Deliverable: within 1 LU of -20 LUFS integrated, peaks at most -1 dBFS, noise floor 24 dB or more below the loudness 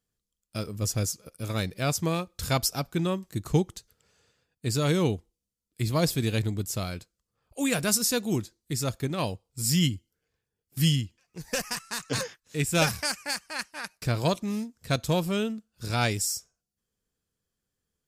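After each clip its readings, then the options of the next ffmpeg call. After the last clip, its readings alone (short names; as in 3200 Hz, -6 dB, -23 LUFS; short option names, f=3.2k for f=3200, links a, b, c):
loudness -28.5 LUFS; peak -8.5 dBFS; loudness target -20.0 LUFS
-> -af "volume=8.5dB,alimiter=limit=-1dB:level=0:latency=1"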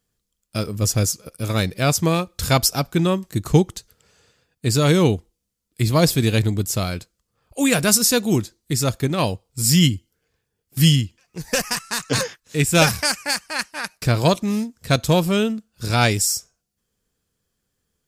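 loudness -20.0 LUFS; peak -1.0 dBFS; noise floor -77 dBFS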